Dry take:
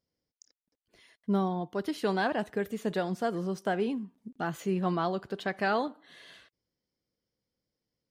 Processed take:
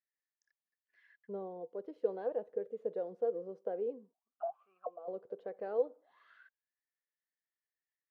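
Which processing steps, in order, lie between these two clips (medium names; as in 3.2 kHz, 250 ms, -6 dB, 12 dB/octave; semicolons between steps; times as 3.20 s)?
4.13–5.08 s: vowel filter a; auto-wah 490–1800 Hz, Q 16, down, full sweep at -33.5 dBFS; trim +8 dB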